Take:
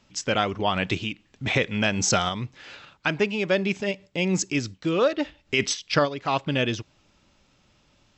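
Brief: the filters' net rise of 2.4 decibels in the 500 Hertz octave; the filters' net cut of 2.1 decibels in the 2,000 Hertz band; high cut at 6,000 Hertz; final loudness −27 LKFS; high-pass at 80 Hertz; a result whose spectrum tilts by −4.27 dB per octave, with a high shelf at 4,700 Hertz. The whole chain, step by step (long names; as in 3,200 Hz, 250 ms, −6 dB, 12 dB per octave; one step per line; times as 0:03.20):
high-pass filter 80 Hz
low-pass filter 6,000 Hz
parametric band 500 Hz +3 dB
parametric band 2,000 Hz −3.5 dB
high-shelf EQ 4,700 Hz +3 dB
level −2 dB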